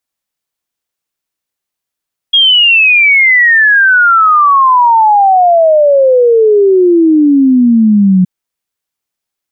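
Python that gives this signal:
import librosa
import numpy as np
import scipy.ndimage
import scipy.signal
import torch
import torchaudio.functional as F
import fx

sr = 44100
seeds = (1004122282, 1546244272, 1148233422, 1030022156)

y = fx.ess(sr, length_s=5.92, from_hz=3300.0, to_hz=180.0, level_db=-3.5)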